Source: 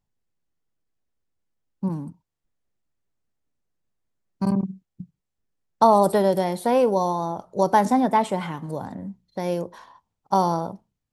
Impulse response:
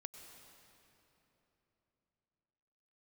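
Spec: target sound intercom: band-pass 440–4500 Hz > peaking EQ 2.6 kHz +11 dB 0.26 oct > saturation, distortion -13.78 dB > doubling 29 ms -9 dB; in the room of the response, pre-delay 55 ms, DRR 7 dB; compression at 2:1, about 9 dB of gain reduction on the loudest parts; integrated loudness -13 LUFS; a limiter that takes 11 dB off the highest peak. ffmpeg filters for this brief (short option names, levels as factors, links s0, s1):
-filter_complex "[0:a]acompressor=threshold=0.0447:ratio=2,alimiter=limit=0.0891:level=0:latency=1,asplit=2[s0][s1];[1:a]atrim=start_sample=2205,adelay=55[s2];[s1][s2]afir=irnorm=-1:irlink=0,volume=0.75[s3];[s0][s3]amix=inputs=2:normalize=0,highpass=440,lowpass=4500,equalizer=f=2600:t=o:w=0.26:g=11,asoftclip=threshold=0.0422,asplit=2[s4][s5];[s5]adelay=29,volume=0.355[s6];[s4][s6]amix=inputs=2:normalize=0,volume=15"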